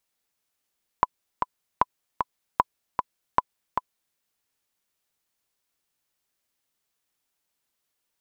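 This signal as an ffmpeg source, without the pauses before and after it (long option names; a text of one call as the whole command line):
ffmpeg -f lavfi -i "aevalsrc='pow(10,(-4.5-5.5*gte(mod(t,2*60/153),60/153))/20)*sin(2*PI*1000*mod(t,60/153))*exp(-6.91*mod(t,60/153)/0.03)':duration=3.13:sample_rate=44100" out.wav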